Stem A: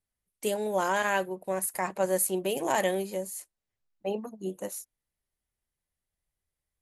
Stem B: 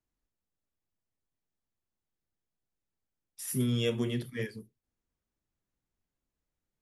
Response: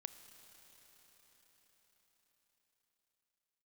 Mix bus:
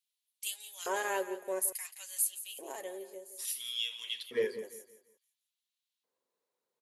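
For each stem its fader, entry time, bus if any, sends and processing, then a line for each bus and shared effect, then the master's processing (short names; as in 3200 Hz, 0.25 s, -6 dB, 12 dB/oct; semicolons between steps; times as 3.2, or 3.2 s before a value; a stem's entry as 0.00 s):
2.03 s -10.5 dB -> 2.75 s -21.5 dB, 0.00 s, no send, echo send -13.5 dB, comb 7.3 ms, depth 43%
0.0 dB, 0.00 s, no send, echo send -14.5 dB, thirty-one-band EQ 315 Hz -10 dB, 500 Hz +8 dB, 1000 Hz +10 dB, 4000 Hz +6 dB; limiter -24.5 dBFS, peak gain reduction 9 dB; high shelf 4500 Hz -11 dB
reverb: off
echo: feedback echo 0.171 s, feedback 35%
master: high shelf 4900 Hz +11.5 dB; LFO high-pass square 0.58 Hz 380–3100 Hz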